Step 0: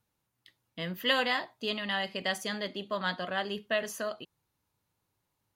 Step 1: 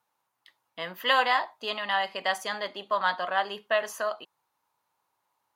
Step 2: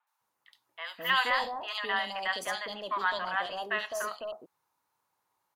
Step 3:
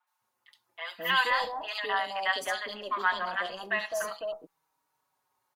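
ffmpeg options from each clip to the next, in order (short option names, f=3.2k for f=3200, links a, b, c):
-af "highpass=f=610:p=1,equalizer=f=930:w=1:g=12.5"
-filter_complex "[0:a]acrossover=split=840[a][b];[a]asoftclip=type=tanh:threshold=-34.5dB[c];[c][b]amix=inputs=2:normalize=0,acrossover=split=740|3000[d][e][f];[f]adelay=70[g];[d]adelay=210[h];[h][e][g]amix=inputs=3:normalize=0"
-filter_complex "[0:a]asplit=2[a][b];[b]adelay=5,afreqshift=-0.37[c];[a][c]amix=inputs=2:normalize=1,volume=4dB"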